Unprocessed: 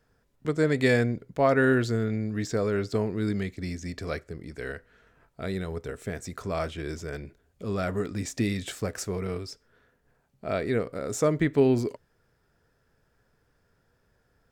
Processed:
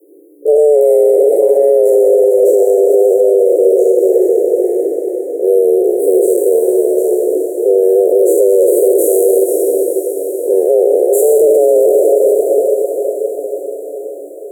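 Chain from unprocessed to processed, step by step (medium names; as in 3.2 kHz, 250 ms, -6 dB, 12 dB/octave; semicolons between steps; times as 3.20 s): spectral sustain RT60 2.31 s; inverse Chebyshev band-stop 570–4900 Hz, stop band 50 dB; on a send: echo that smears into a reverb 467 ms, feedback 60%, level -7.5 dB; on the sum: frequency shift +290 Hz; loudness maximiser +25 dB; trim -1 dB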